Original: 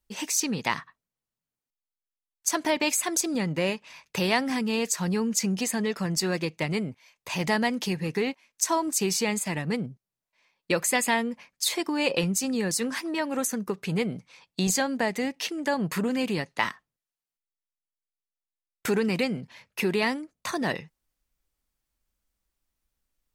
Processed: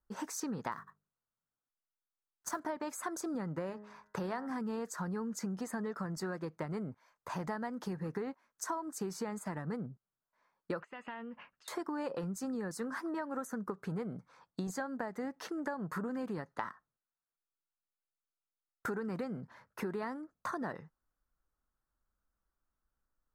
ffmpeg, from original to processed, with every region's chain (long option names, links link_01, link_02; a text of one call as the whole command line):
ffmpeg -i in.wav -filter_complex "[0:a]asettb=1/sr,asplit=3[link_01][link_02][link_03];[link_01]atrim=end=0.724[link_04];[link_02]atrim=start=0.72:end=2.6,asetpts=PTS-STARTPTS,afade=type=in:duration=0.004:curve=qsin,afade=type=out:start_time=1.876:duration=0.004:curve=qsin,bandreject=frequency=50:width_type=h:width=6,bandreject=frequency=100:width_type=h:width=6,bandreject=frequency=150:width_type=h:width=6,bandreject=frequency=200:width_type=h:width=6,bandreject=frequency=250:width_type=h:width=6,bandreject=frequency=300:width_type=h:width=6,bandreject=frequency=350:width_type=h:width=6,bandreject=frequency=400:width_type=h:width=6,bandreject=frequency=450:width_type=h:width=6,acrusher=bits=3:mode=log:mix=0:aa=0.000001[link_05];[link_03]atrim=start=2.596[link_06];[link_04][link_05]acrossfade=duration=0.004:curve1=hsin:curve2=qsin[link_07];[link_07][link_06]acrossfade=duration=0.004:curve1=qsin:curve2=hsin,asettb=1/sr,asplit=3[link_08][link_09][link_10];[link_08]atrim=end=3.694[link_11];[link_09]atrim=start=3.69:end=4.47,asetpts=PTS-STARTPTS,afade=type=in:duration=0.004:curve=qsin,afade=type=out:start_time=0.776:duration=0.004:curve=qsin,highshelf=frequency=12000:gain=-8,bandreject=frequency=104.4:width_type=h:width=4,bandreject=frequency=208.8:width_type=h:width=4,bandreject=frequency=313.2:width_type=h:width=4,bandreject=frequency=417.6:width_type=h:width=4,bandreject=frequency=522:width_type=h:width=4,bandreject=frequency=626.4:width_type=h:width=4,bandreject=frequency=730.8:width_type=h:width=4,bandreject=frequency=835.2:width_type=h:width=4,bandreject=frequency=939.6:width_type=h:width=4,bandreject=frequency=1044:width_type=h:width=4,bandreject=frequency=1148.4:width_type=h:width=4,bandreject=frequency=1252.8:width_type=h:width=4,bandreject=frequency=1357.2:width_type=h:width=4,bandreject=frequency=1461.6:width_type=h:width=4,bandreject=frequency=1566:width_type=h:width=4,bandreject=frequency=1670.4:width_type=h:width=4,bandreject=frequency=1774.8:width_type=h:width=4,bandreject=frequency=1879.2:width_type=h:width=4,bandreject=frequency=1983.6:width_type=h:width=4[link_12];[link_10]atrim=start=4.466[link_13];[link_11][link_12]acrossfade=duration=0.004:curve1=hsin:curve2=qsin[link_14];[link_14][link_13]acrossfade=duration=0.004:curve1=qsin:curve2=hsin,asettb=1/sr,asplit=3[link_15][link_16][link_17];[link_15]atrim=end=10.814[link_18];[link_16]atrim=start=10.81:end=11.68,asetpts=PTS-STARTPTS,afade=type=in:duration=0.004:curve=qsin,afade=type=out:start_time=0.866:duration=0.004:curve=qsin,acompressor=threshold=-37dB:ratio=12:attack=3.2:release=140:knee=1:detection=peak,lowpass=frequency=2800:width_type=q:width=13[link_19];[link_17]atrim=start=11.676[link_20];[link_18][link_19]acrossfade=duration=0.004:curve1=hsin:curve2=qsin[link_21];[link_21][link_20]acrossfade=duration=0.004:curve1=qsin:curve2=hsin,highshelf=frequency=1900:width_type=q:width=3:gain=-10.5,acompressor=threshold=-31dB:ratio=6,volume=-4dB" out.wav